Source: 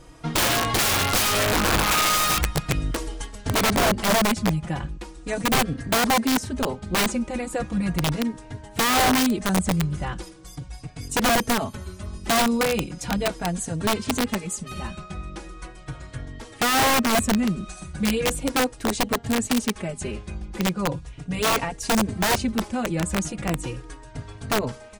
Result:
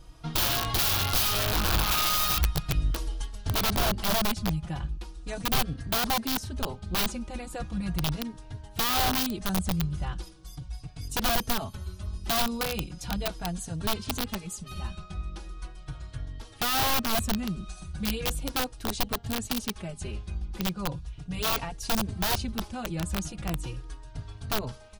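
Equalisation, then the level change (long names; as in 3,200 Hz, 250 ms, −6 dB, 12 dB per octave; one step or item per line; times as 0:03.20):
octave-band graphic EQ 125/250/500/1,000/2,000/8,000 Hz −4/−10/−10/−5/−11/−11 dB
+2.0 dB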